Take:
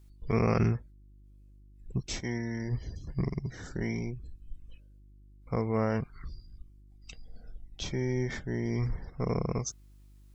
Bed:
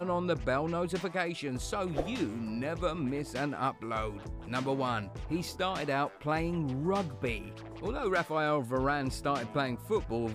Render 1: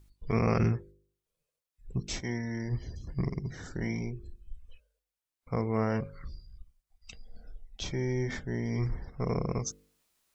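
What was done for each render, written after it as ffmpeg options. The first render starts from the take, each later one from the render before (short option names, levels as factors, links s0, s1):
-af "bandreject=f=50:t=h:w=4,bandreject=f=100:t=h:w=4,bandreject=f=150:t=h:w=4,bandreject=f=200:t=h:w=4,bandreject=f=250:t=h:w=4,bandreject=f=300:t=h:w=4,bandreject=f=350:t=h:w=4,bandreject=f=400:t=h:w=4,bandreject=f=450:t=h:w=4,bandreject=f=500:t=h:w=4,bandreject=f=550:t=h:w=4"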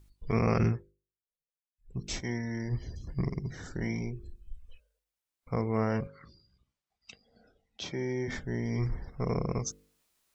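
-filter_complex "[0:a]asettb=1/sr,asplit=3[s0][s1][s2];[s0]atrim=end=6.074[s3];[s1]atrim=start=6.07:end=8.28,asetpts=PTS-STARTPTS,afade=t=in:d=0.004:c=qsin,afade=t=out:st=2.206:d=0.004:c=qsin,highpass=170,lowpass=5800[s4];[s2]atrim=start=8.276[s5];[s3][s4]acrossfade=d=0.004:c1=hsin:c2=qsin[s6];[s6][s5]acrossfade=d=0.004:c1=qsin:c2=hsin,asplit=3[s7][s8][s9];[s7]atrim=end=1.07,asetpts=PTS-STARTPTS,afade=t=out:st=0.69:d=0.38:c=qua:silence=0.112202[s10];[s8]atrim=start=1.07:end=1.69,asetpts=PTS-STARTPTS,volume=0.112[s11];[s9]atrim=start=1.69,asetpts=PTS-STARTPTS,afade=t=in:d=0.38:c=qua:silence=0.112202[s12];[s10][s11][s12]concat=n=3:v=0:a=1"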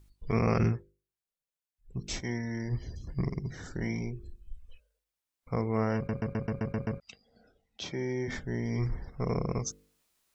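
-filter_complex "[0:a]asplit=9[s0][s1][s2][s3][s4][s5][s6][s7][s8];[s0]atrim=end=6.092[s9];[s1]atrim=start=5.958:end=6.092[s10];[s2]atrim=start=5.958:end=6.092[s11];[s3]atrim=start=5.958:end=6.092[s12];[s4]atrim=start=5.958:end=6.092[s13];[s5]atrim=start=5.958:end=6.092[s14];[s6]atrim=start=5.958:end=6.092[s15];[s7]atrim=start=5.958:end=6.092[s16];[s8]atrim=start=6.998[s17];[s9][s10]acrossfade=d=0.004:c1=hsin:c2=hsin[s18];[s18][s11]acrossfade=d=0.004:c1=hsin:c2=hsin[s19];[s19][s12]acrossfade=d=0.004:c1=hsin:c2=hsin[s20];[s20][s13]acrossfade=d=0.004:c1=hsin:c2=hsin[s21];[s21][s14]acrossfade=d=0.004:c1=hsin:c2=hsin[s22];[s22][s15]acrossfade=d=0.004:c1=hsin:c2=hsin[s23];[s23][s16]acrossfade=d=0.004:c1=hsin:c2=hsin[s24];[s24][s17]acrossfade=d=0.004:c1=hsin:c2=hsin"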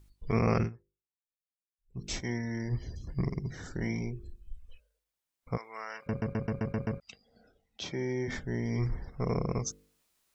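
-filter_complex "[0:a]asplit=3[s0][s1][s2];[s0]afade=t=out:st=5.56:d=0.02[s3];[s1]highpass=1300,afade=t=in:st=5.56:d=0.02,afade=t=out:st=6.06:d=0.02[s4];[s2]afade=t=in:st=6.06:d=0.02[s5];[s3][s4][s5]amix=inputs=3:normalize=0,asplit=3[s6][s7][s8];[s6]atrim=end=0.7,asetpts=PTS-STARTPTS,afade=t=out:st=0.58:d=0.12:silence=0.149624[s9];[s7]atrim=start=0.7:end=1.91,asetpts=PTS-STARTPTS,volume=0.15[s10];[s8]atrim=start=1.91,asetpts=PTS-STARTPTS,afade=t=in:d=0.12:silence=0.149624[s11];[s9][s10][s11]concat=n=3:v=0:a=1"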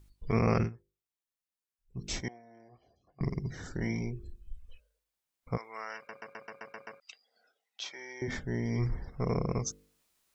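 -filter_complex "[0:a]asettb=1/sr,asplit=3[s0][s1][s2];[s0]atrim=end=2.284[s3];[s1]atrim=start=2.28:end=3.21,asetpts=PTS-STARTPTS,afade=t=in:d=0.004:c=qsin,afade=t=out:st=0.926:d=0.004:c=qsin,asplit=3[s4][s5][s6];[s4]bandpass=f=730:t=q:w=8,volume=1[s7];[s5]bandpass=f=1090:t=q:w=8,volume=0.501[s8];[s6]bandpass=f=2440:t=q:w=8,volume=0.355[s9];[s7][s8][s9]amix=inputs=3:normalize=0[s10];[s2]atrim=start=3.206[s11];[s3][s10]acrossfade=d=0.004:c1=hsin:c2=qsin[s12];[s12][s11]acrossfade=d=0.004:c1=qsin:c2=hsin,asettb=1/sr,asplit=3[s13][s14][s15];[s13]atrim=end=6.054[s16];[s14]atrim=start=6.05:end=8.22,asetpts=PTS-STARTPTS,afade=t=in:d=0.004:c=qsin,afade=t=out:st=2.166:d=0.004:c=qsin,highpass=960[s17];[s15]atrim=start=8.216[s18];[s16][s17]acrossfade=d=0.004:c1=hsin:c2=qsin[s19];[s19][s18]acrossfade=d=0.004:c1=qsin:c2=hsin"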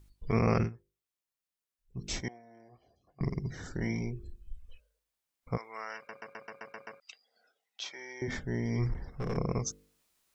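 -filter_complex "[0:a]asettb=1/sr,asplit=3[s0][s1][s2];[s0]atrim=end=8.924[s3];[s1]atrim=start=8.92:end=9.37,asetpts=PTS-STARTPTS,afade=t=in:d=0.004:c=qsin,afade=t=out:st=0.446:d=0.004:c=qsin,aeval=exprs='clip(val(0),-1,0.0188)':c=same[s4];[s2]atrim=start=9.366[s5];[s3][s4]acrossfade=d=0.004:c1=hsin:c2=qsin[s6];[s6][s5]acrossfade=d=0.004:c1=qsin:c2=hsin"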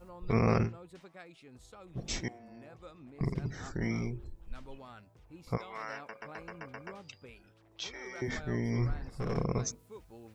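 -filter_complex "[1:a]volume=0.112[s0];[0:a][s0]amix=inputs=2:normalize=0"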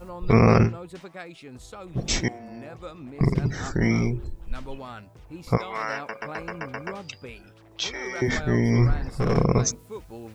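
-af "volume=3.76,alimiter=limit=0.708:level=0:latency=1"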